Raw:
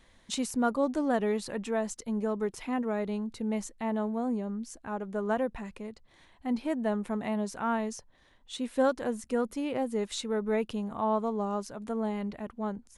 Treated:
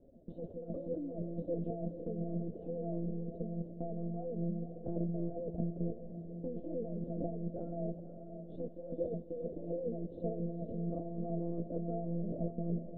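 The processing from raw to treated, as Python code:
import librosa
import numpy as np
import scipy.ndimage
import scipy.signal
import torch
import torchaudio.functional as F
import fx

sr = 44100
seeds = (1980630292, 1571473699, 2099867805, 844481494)

y = np.where(x < 0.0, 10.0 ** (-12.0 / 20.0) * x, x)
y = fx.over_compress(y, sr, threshold_db=-40.0, ratio=-1.0)
y = scipy.signal.sosfilt(scipy.signal.ellip(4, 1.0, 40, 620.0, 'lowpass', fs=sr, output='sos'), y)
y = fx.dynamic_eq(y, sr, hz=150.0, q=1.4, threshold_db=-55.0, ratio=4.0, max_db=-4)
y = scipy.signal.sosfilt(scipy.signal.butter(2, 110.0, 'highpass', fs=sr, output='sos'), y)
y = fx.lpc_monotone(y, sr, seeds[0], pitch_hz=170.0, order=16)
y = fx.echo_diffused(y, sr, ms=501, feedback_pct=45, wet_db=-9)
y = y * 10.0 ** (5.5 / 20.0)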